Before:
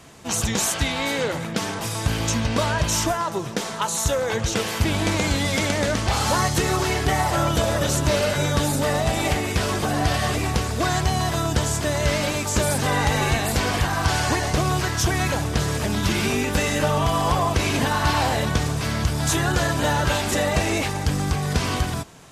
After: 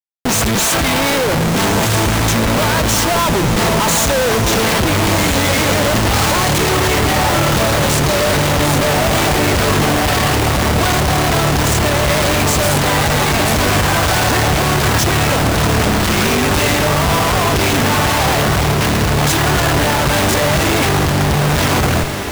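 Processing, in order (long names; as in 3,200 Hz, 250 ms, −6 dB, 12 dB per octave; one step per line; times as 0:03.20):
comparator with hysteresis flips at −31 dBFS
feedback delay with all-pass diffusion 1,382 ms, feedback 60%, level −8 dB
level +7.5 dB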